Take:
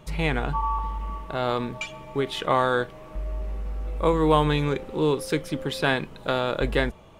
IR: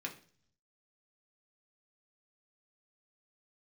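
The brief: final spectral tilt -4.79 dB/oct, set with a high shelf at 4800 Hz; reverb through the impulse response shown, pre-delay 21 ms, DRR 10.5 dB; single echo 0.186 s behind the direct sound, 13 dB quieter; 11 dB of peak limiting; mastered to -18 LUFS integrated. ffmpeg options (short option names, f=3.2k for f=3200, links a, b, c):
-filter_complex "[0:a]highshelf=f=4.8k:g=8.5,alimiter=limit=-16.5dB:level=0:latency=1,aecho=1:1:186:0.224,asplit=2[a][b];[1:a]atrim=start_sample=2205,adelay=21[c];[b][c]afir=irnorm=-1:irlink=0,volume=-11dB[d];[a][d]amix=inputs=2:normalize=0,volume=10.5dB"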